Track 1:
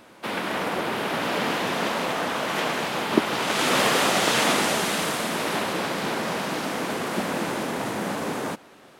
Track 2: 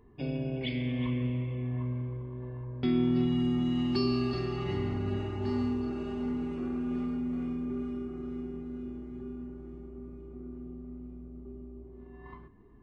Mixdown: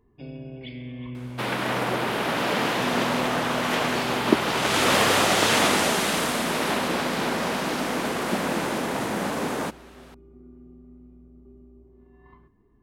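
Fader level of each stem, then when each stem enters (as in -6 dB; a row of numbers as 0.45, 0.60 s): +1.0, -5.0 dB; 1.15, 0.00 s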